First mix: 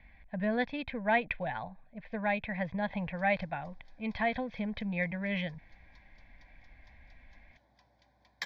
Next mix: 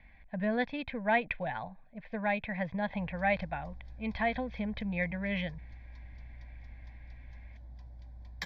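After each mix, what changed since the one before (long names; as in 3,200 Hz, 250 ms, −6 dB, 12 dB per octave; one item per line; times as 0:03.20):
background: remove meter weighting curve A
master: add high-shelf EQ 8,400 Hz −4.5 dB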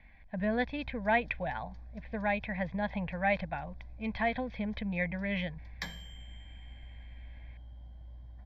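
background: entry −2.60 s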